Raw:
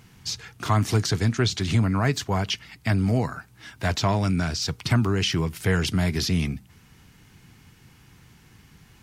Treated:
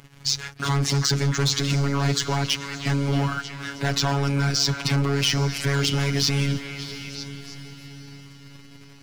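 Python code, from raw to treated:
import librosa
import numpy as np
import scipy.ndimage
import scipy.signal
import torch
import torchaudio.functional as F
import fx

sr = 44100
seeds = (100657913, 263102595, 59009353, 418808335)

p1 = fx.high_shelf(x, sr, hz=10000.0, db=-11.0)
p2 = fx.leveller(p1, sr, passes=2)
p3 = p2 + fx.echo_stepped(p2, sr, ms=315, hz=1700.0, octaves=0.7, feedback_pct=70, wet_db=-10.5, dry=0)
p4 = 10.0 ** (-19.0 / 20.0) * np.tanh(p3 / 10.0 ** (-19.0 / 20.0))
p5 = fx.robotise(p4, sr, hz=140.0)
p6 = np.clip(p5, -10.0 ** (-22.0 / 20.0), 10.0 ** (-22.0 / 20.0))
p7 = p5 + (p6 * 10.0 ** (-5.5 / 20.0))
p8 = fx.echo_diffused(p7, sr, ms=702, feedback_pct=47, wet_db=-13)
y = fx.dynamic_eq(p8, sr, hz=6200.0, q=1.5, threshold_db=-41.0, ratio=4.0, max_db=5)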